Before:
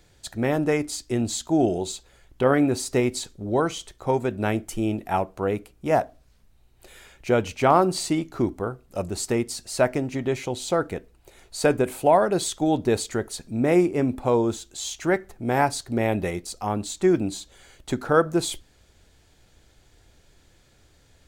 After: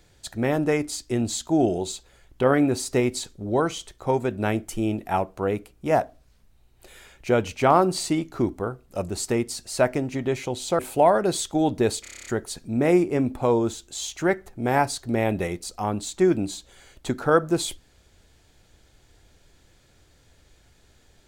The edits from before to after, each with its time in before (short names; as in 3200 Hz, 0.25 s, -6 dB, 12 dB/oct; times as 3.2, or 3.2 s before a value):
10.79–11.86 cut
13.09 stutter 0.03 s, 9 plays